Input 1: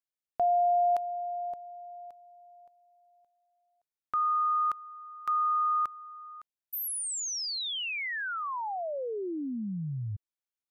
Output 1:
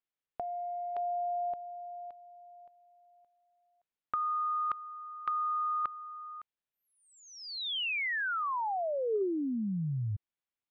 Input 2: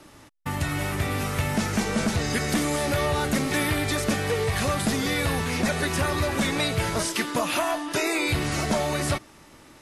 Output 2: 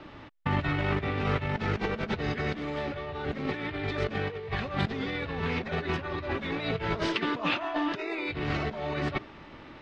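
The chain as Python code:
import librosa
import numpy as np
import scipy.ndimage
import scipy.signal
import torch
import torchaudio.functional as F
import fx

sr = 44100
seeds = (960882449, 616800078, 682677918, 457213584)

y = scipy.signal.sosfilt(scipy.signal.butter(4, 3600.0, 'lowpass', fs=sr, output='sos'), x)
y = fx.dynamic_eq(y, sr, hz=410.0, q=7.5, threshold_db=-50.0, ratio=5.0, max_db=7)
y = fx.over_compress(y, sr, threshold_db=-29.0, ratio=-0.5)
y = F.gain(torch.from_numpy(y), -1.0).numpy()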